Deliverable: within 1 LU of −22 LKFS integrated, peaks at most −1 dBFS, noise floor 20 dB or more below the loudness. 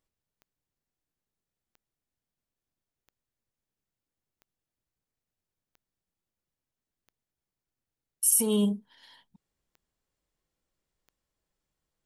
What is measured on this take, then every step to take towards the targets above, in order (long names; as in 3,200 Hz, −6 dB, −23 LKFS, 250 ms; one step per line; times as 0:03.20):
number of clicks 9; integrated loudness −24.5 LKFS; sample peak −10.5 dBFS; target loudness −22.0 LKFS
→ click removal
level +2.5 dB